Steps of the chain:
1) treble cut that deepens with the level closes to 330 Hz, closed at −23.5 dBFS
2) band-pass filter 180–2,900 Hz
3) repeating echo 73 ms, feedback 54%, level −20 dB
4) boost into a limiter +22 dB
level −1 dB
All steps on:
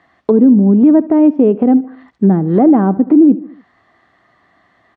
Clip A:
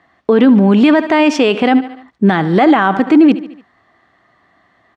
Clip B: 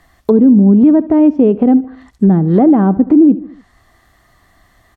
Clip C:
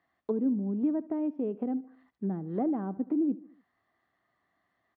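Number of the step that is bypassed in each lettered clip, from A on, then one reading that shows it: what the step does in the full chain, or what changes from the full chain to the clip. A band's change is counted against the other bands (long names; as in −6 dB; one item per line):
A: 1, 1 kHz band +9.0 dB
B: 2, 125 Hz band +2.5 dB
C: 4, change in crest factor +3.5 dB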